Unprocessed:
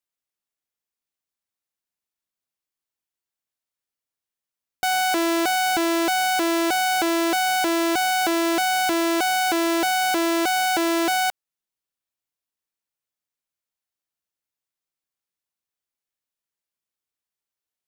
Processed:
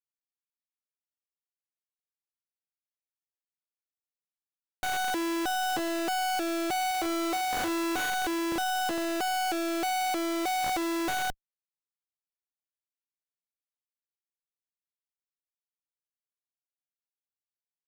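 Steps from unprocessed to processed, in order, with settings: moving spectral ripple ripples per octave 1.1, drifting -0.32 Hz, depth 11 dB; added noise pink -42 dBFS; LPF 2800 Hz 6 dB/oct; Schmitt trigger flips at -27.5 dBFS; low shelf 210 Hz -10.5 dB; 6.87–8.1 flutter echo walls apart 6.8 m, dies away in 0.28 s; sample leveller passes 3; gain -8 dB

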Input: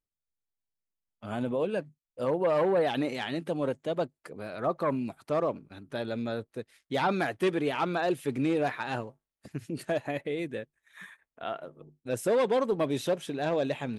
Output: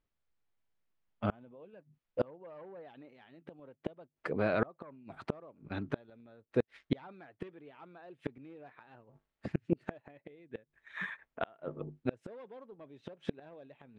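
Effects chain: LPF 2700 Hz 12 dB/oct; flipped gate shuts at -25 dBFS, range -33 dB; gain +9 dB

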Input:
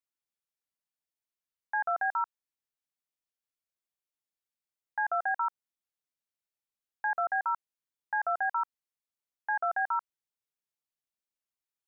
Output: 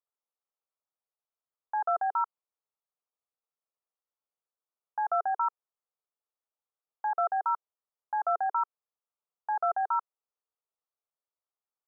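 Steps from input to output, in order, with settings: elliptic band-pass 420–1300 Hz; gain +3.5 dB

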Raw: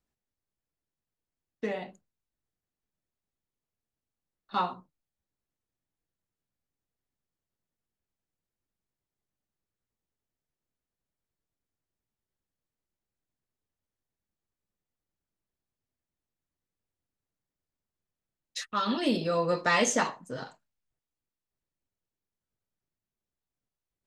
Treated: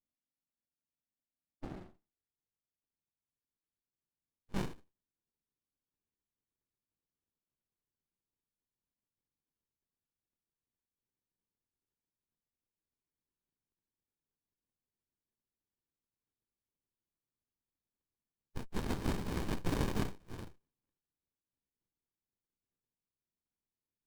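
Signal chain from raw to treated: spectral contrast lowered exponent 0.25; band-pass sweep 270 Hz -> 4700 Hz, 1.51–5.34; running maximum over 65 samples; gain +3.5 dB

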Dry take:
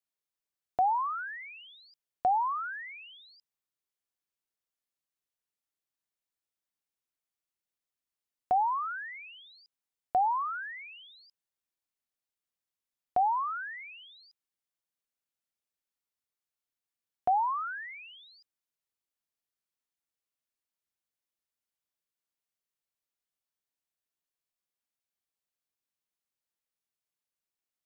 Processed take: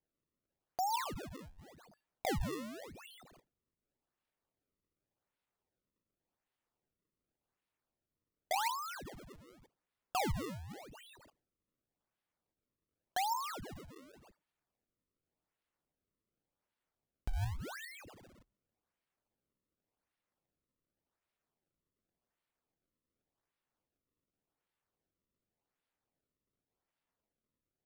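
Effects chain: high shelf 4000 Hz +9.5 dB; resonator 920 Hz, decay 0.34 s, mix 70%; decimation with a swept rate 32×, swing 160% 0.88 Hz; gain +1 dB

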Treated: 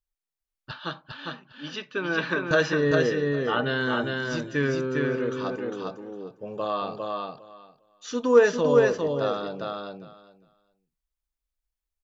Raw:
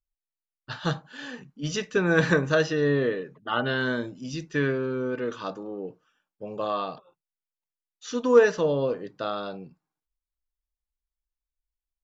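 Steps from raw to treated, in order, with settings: 0.71–2.51 speaker cabinet 330–4100 Hz, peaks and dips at 460 Hz -10 dB, 750 Hz -8 dB, 1900 Hz -7 dB; feedback echo 0.404 s, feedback 15%, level -3 dB

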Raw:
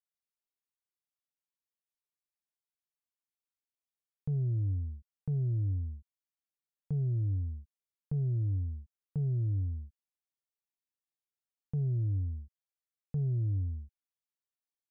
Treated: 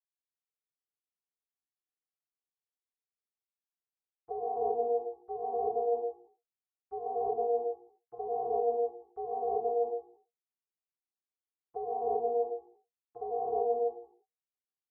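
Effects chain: arpeggiated vocoder bare fifth, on A#2, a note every 81 ms; ring modulator 590 Hz; non-linear reverb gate 0.37 s rising, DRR -7.5 dB; gain -3.5 dB

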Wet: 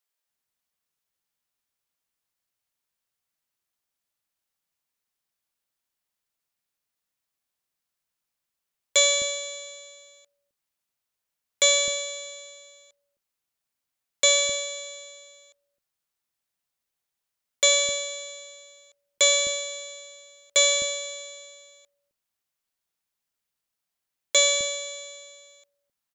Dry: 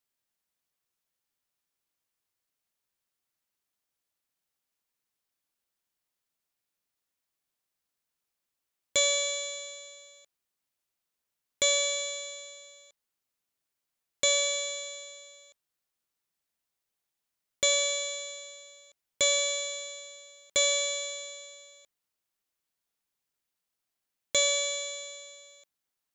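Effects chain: bands offset in time highs, lows 0.26 s, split 340 Hz; upward expander 1.5:1, over -34 dBFS; gain +6.5 dB

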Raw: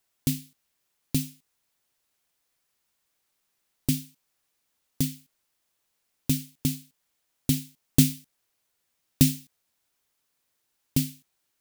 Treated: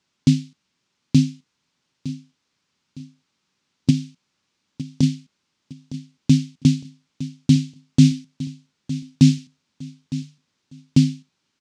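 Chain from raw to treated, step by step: low shelf 210 Hz +9 dB; 3.9–5.03 compressor 4:1, threshold -23 dBFS, peak gain reduction 7 dB; limiter -9.5 dBFS, peak gain reduction 10 dB; speaker cabinet 120–6200 Hz, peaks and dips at 170 Hz +4 dB, 240 Hz +4 dB, 480 Hz -4 dB, 690 Hz -8 dB, 1800 Hz -3 dB; feedback echo 0.91 s, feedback 37%, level -14.5 dB; gain +7.5 dB

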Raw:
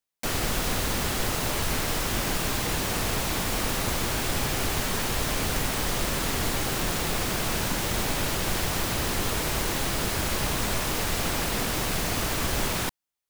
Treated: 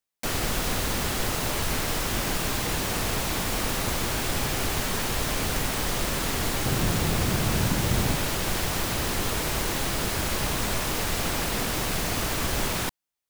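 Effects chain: 6.65–8.16 bell 110 Hz +9 dB 2.3 oct

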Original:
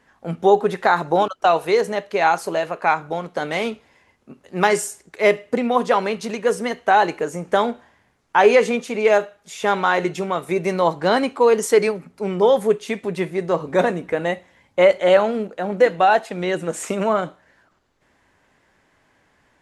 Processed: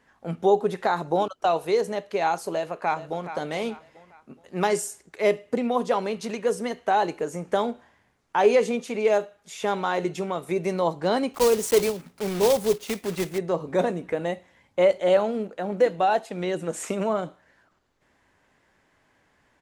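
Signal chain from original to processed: 2.5–3.32 echo throw 0.42 s, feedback 35%, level -13.5 dB; 11.34–13.4 block floating point 3-bit; dynamic EQ 1700 Hz, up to -7 dB, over -32 dBFS, Q 0.81; gain -4 dB

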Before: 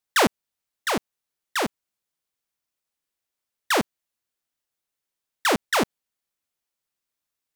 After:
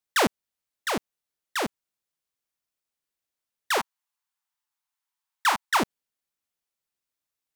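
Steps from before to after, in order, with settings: 3.78–5.8 resonant low shelf 660 Hz -11 dB, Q 3; gain -3 dB

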